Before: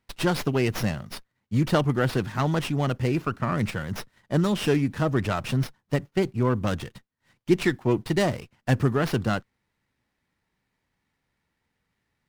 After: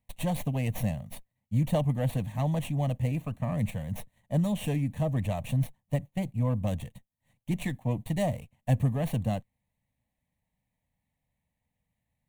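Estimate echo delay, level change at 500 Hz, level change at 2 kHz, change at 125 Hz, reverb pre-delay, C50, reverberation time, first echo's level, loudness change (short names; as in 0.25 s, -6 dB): none, -8.0 dB, -12.5 dB, -1.5 dB, none, none, none, none, -4.5 dB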